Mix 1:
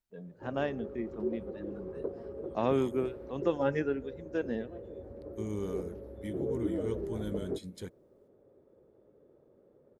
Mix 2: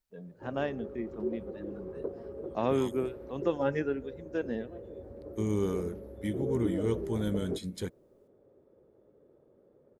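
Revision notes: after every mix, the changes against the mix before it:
second voice +6.5 dB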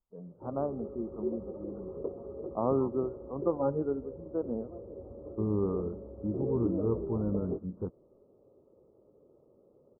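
master: add steep low-pass 1.3 kHz 96 dB/octave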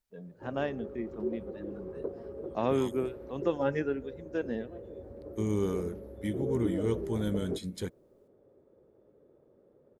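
master: remove steep low-pass 1.3 kHz 96 dB/octave

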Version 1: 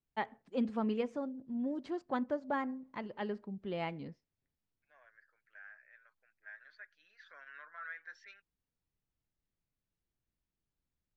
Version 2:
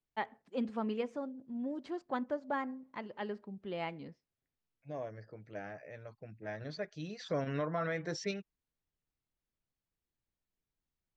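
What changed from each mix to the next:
first voice: add bass shelf 220 Hz -5.5 dB; second voice: remove ladder band-pass 1.7 kHz, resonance 70%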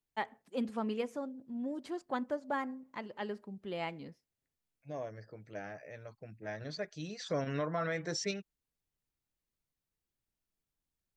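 master: remove distance through air 110 m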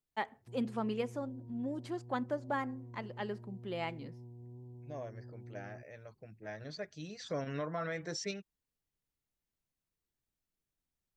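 second voice -3.0 dB; background: unmuted

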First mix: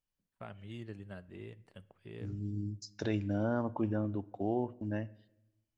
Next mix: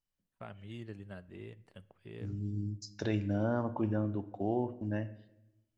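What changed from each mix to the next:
second voice: send +7.0 dB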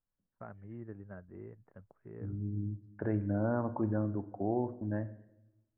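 first voice: send off; master: add steep low-pass 1.7 kHz 36 dB/octave

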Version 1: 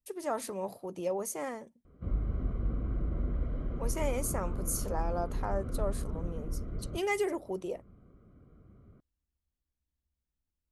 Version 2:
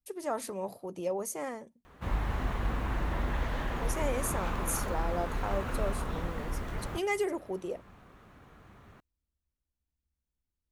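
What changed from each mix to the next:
background: remove boxcar filter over 50 samples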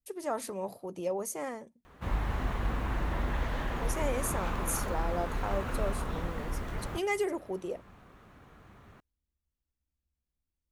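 no change

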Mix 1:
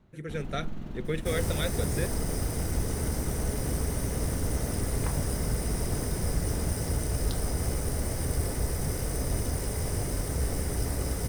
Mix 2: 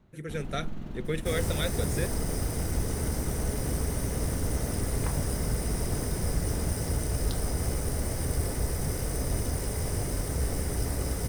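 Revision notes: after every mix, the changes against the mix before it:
speech: add treble shelf 8.8 kHz +10.5 dB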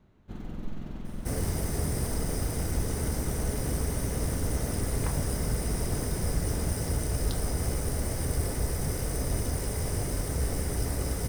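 speech: muted

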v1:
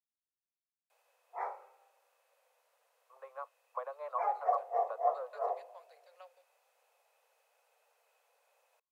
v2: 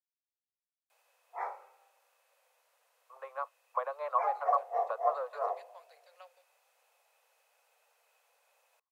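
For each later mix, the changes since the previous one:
first voice +5.5 dB; master: add tilt shelf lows -4 dB, about 690 Hz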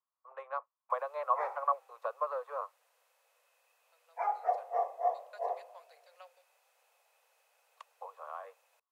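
first voice: entry -2.85 s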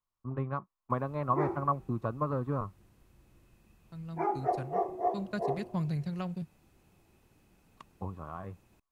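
second voice +12.0 dB; master: remove steep high-pass 480 Hz 96 dB/octave

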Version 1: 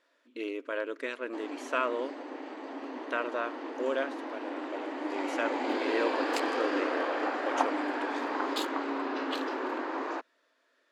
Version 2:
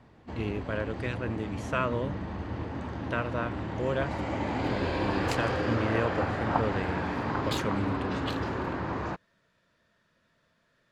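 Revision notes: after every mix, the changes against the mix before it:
background: entry -1.05 s; master: remove brick-wall FIR high-pass 250 Hz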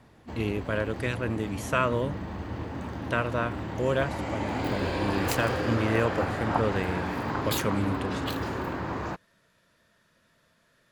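speech +3.5 dB; master: remove distance through air 68 m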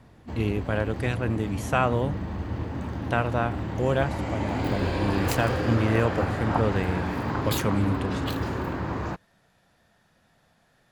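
speech: remove Butterworth band-stop 780 Hz, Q 3.4; master: add bass shelf 210 Hz +6.5 dB

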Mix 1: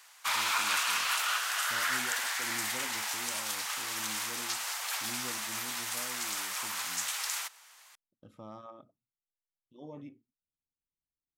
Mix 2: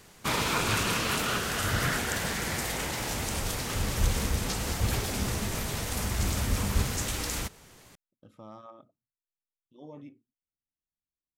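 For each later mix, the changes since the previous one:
background: remove high-pass 880 Hz 24 dB/octave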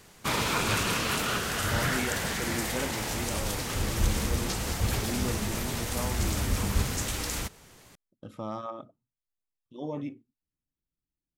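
speech +11.0 dB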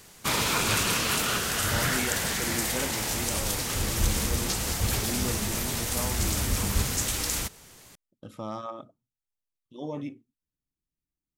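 master: add treble shelf 3.8 kHz +7 dB

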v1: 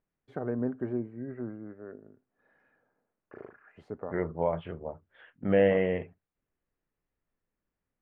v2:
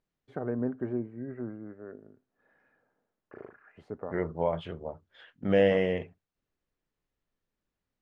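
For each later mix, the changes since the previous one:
second voice: remove low-pass 2.6 kHz 24 dB/octave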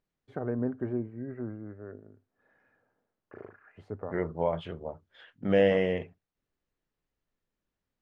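first voice: add peaking EQ 99 Hz +11.5 dB 0.25 oct

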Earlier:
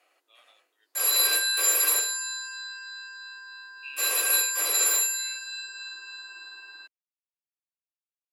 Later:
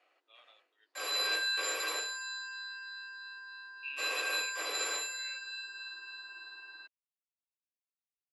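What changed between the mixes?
background -3.5 dB; master: add low-pass 4.1 kHz 12 dB/octave

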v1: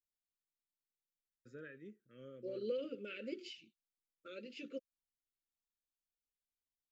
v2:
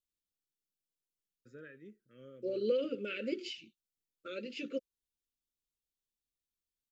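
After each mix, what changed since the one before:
second voice +7.5 dB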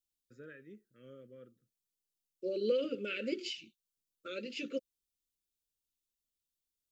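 first voice: entry -1.15 s; second voice: add treble shelf 3.9 kHz +6.5 dB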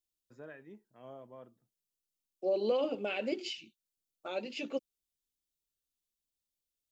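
master: remove elliptic band-stop 530–1300 Hz, stop band 40 dB

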